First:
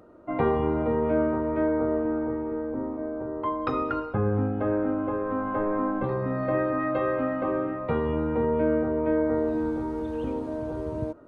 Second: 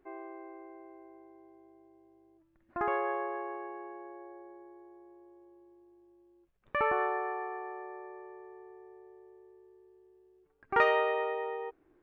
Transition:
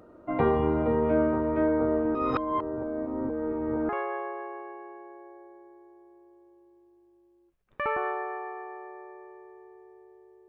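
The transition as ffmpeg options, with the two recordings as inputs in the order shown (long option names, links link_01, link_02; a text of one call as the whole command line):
ffmpeg -i cue0.wav -i cue1.wav -filter_complex "[0:a]apad=whole_dur=10.48,atrim=end=10.48,asplit=2[link_01][link_02];[link_01]atrim=end=2.152[link_03];[link_02]atrim=start=2.148:end=3.892,asetpts=PTS-STARTPTS,areverse[link_04];[1:a]atrim=start=2.838:end=9.43[link_05];[link_03][link_04]acrossfade=duration=0.004:curve1=hsin:curve2=hsin[link_06];[link_06][link_05]acrossfade=duration=0.004:curve1=hsin:curve2=hsin" out.wav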